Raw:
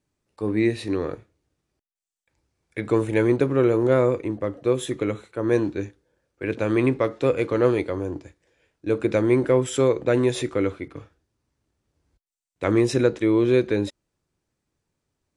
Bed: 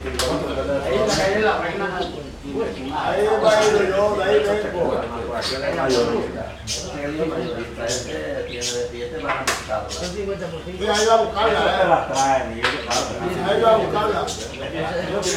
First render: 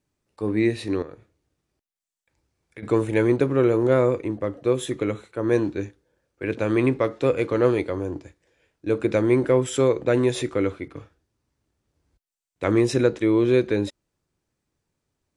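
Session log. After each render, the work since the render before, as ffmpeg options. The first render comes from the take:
-filter_complex "[0:a]asettb=1/sr,asplit=3[a][b][c];[a]atrim=end=1.024[d];[b]atrim=start=1.02:end=2.83,asetpts=PTS-STARTPTS,afade=t=in:d=0.004:c=qsin,afade=t=out:st=1.806:d=0.004:c=qsin,acompressor=threshold=-44dB:ratio=2:attack=3.2:release=140:knee=1:detection=peak[e];[c]atrim=start=2.826[f];[d][e]acrossfade=d=0.004:c1=hsin:c2=qsin[g];[g][f]acrossfade=d=0.004:c1=qsin:c2=hsin"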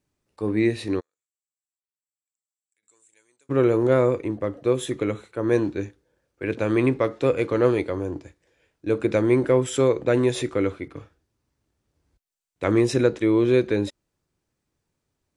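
-filter_complex "[0:a]asplit=3[a][b][c];[a]afade=t=out:st=0.99:d=0.02[d];[b]bandpass=f=7.7k:t=q:w=12,afade=t=in:st=0.99:d=0.02,afade=t=out:st=3.49:d=0.02[e];[c]afade=t=in:st=3.49:d=0.02[f];[d][e][f]amix=inputs=3:normalize=0"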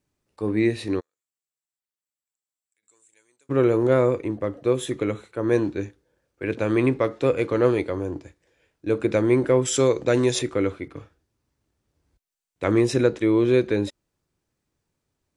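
-filter_complex "[0:a]asettb=1/sr,asplit=3[a][b][c];[a]atrim=end=9.654[d];[b]atrim=start=9.65:end=10.39,asetpts=PTS-STARTPTS,afade=t=in:d=0.004:c=qsin,afade=t=out:st=0.736:d=0.004:c=qsin,equalizer=f=5.8k:w=1.1:g=10.5[e];[c]atrim=start=10.386[f];[d][e]acrossfade=d=0.004:c1=hsin:c2=qsin[g];[g][f]acrossfade=d=0.004:c1=qsin:c2=hsin"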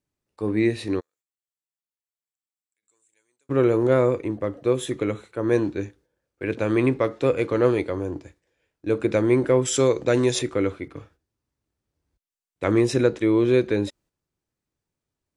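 -af "agate=range=-7dB:threshold=-54dB:ratio=16:detection=peak"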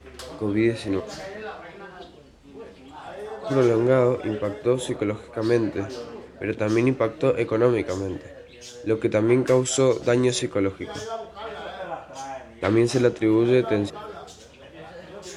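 -filter_complex "[1:a]volume=-17dB[a];[0:a][a]amix=inputs=2:normalize=0"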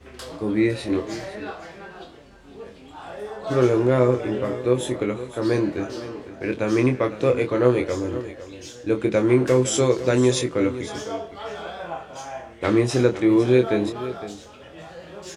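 -filter_complex "[0:a]asplit=2[a][b];[b]adelay=24,volume=-5.5dB[c];[a][c]amix=inputs=2:normalize=0,aecho=1:1:507:0.2"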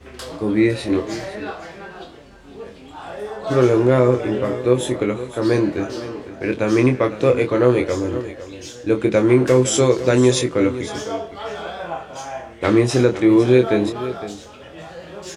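-af "volume=4dB,alimiter=limit=-3dB:level=0:latency=1"

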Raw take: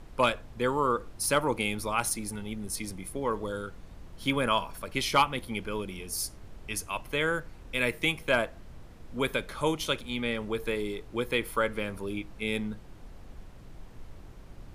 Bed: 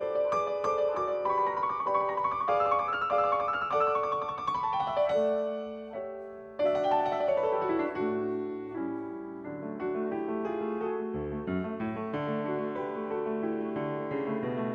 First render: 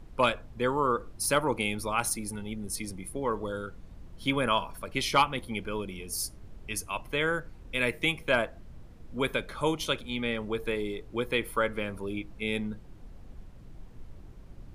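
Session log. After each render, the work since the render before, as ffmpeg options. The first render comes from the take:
-af "afftdn=nr=6:nf=-49"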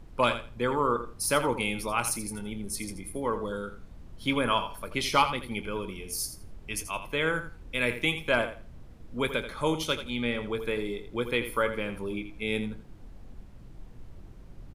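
-filter_complex "[0:a]asplit=2[a][b];[b]adelay=25,volume=-13.5dB[c];[a][c]amix=inputs=2:normalize=0,aecho=1:1:83|166|249:0.282|0.0535|0.0102"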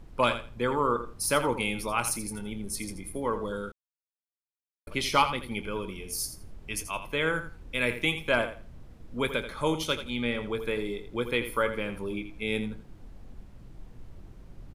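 -filter_complex "[0:a]asplit=3[a][b][c];[a]atrim=end=3.72,asetpts=PTS-STARTPTS,afade=t=out:st=3.716:d=0.004:c=hsin[d];[b]atrim=start=3.72:end=4.87,asetpts=PTS-STARTPTS,volume=0[e];[c]atrim=start=4.87,asetpts=PTS-STARTPTS,afade=t=in:d=0.004:c=hsin[f];[d][e][f]concat=n=3:v=0:a=1"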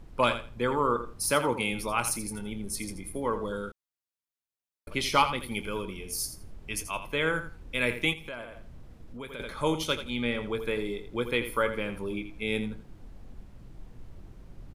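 -filter_complex "[0:a]asettb=1/sr,asplit=3[a][b][c];[a]atrim=end=1.314[d];[b]atrim=start=1.31:end=1.72,asetpts=PTS-STARTPTS,afade=t=in:d=0.004:c=qsin,afade=t=out:st=0.406:d=0.004:c=qsin,highpass=73[e];[c]atrim=start=1.716[f];[d][e]acrossfade=d=0.004:c1=hsin:c2=qsin[g];[g][f]acrossfade=d=0.004:c1=qsin:c2=hsin,asettb=1/sr,asplit=3[h][i][j];[h]atrim=end=5.404[k];[i]atrim=start=5.4:end=5.82,asetpts=PTS-STARTPTS,afade=t=in:d=0.004:c=qsin,afade=t=out:st=0.416:d=0.004:c=qsin,aemphasis=mode=production:type=cd[l];[j]atrim=start=5.816[m];[k][l]acrossfade=d=0.004:c1=hsin:c2=qsin[n];[n][m]acrossfade=d=0.004:c1=qsin:c2=hsin,asettb=1/sr,asplit=3[o][p][q];[o]atrim=end=8.134[r];[p]atrim=start=8.13:end=9.4,asetpts=PTS-STARTPTS,afade=t=in:d=0.004:c=qsin,afade=t=out:st=1.266:d=0.004:c=qsin,acompressor=threshold=-40dB:ratio=3:attack=3.2:release=140:knee=1:detection=peak[s];[q]atrim=start=9.396[t];[r][s]acrossfade=d=0.004:c1=hsin:c2=qsin[u];[u][t]acrossfade=d=0.004:c1=qsin:c2=hsin"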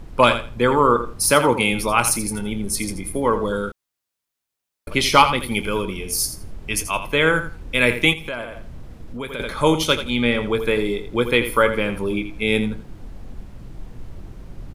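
-af "volume=10.5dB,alimiter=limit=-2dB:level=0:latency=1"

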